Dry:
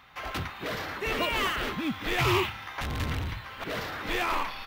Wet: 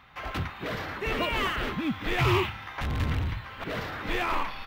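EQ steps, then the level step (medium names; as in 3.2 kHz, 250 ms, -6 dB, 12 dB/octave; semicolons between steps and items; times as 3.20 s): tone controls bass +4 dB, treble -6 dB; 0.0 dB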